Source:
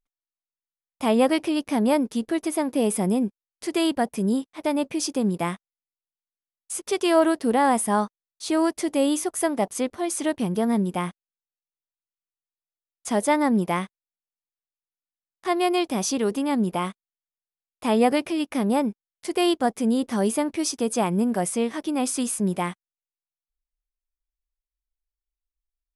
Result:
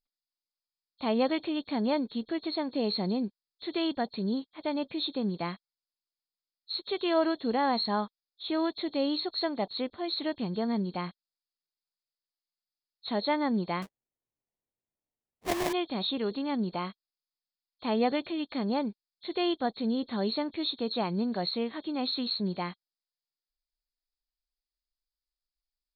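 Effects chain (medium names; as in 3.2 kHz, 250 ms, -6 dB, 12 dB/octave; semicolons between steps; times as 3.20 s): knee-point frequency compression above 3.2 kHz 4:1; 13.82–15.73 s: sample-rate reducer 1.4 kHz, jitter 20%; trim -7.5 dB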